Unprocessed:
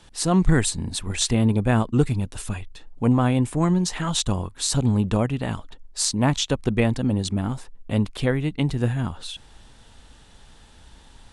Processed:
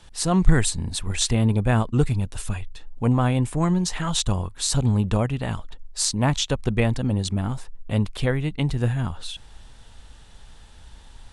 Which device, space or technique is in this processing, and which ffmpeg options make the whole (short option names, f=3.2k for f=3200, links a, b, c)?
low shelf boost with a cut just above: -af "lowshelf=f=73:g=6,equalizer=f=280:t=o:w=1.1:g=-4"